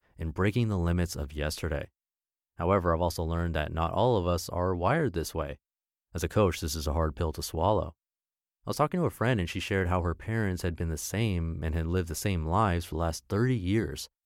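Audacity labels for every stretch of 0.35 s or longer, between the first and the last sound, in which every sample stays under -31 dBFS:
1.830000	2.600000	silence
5.520000	6.150000	silence
7.870000	8.680000	silence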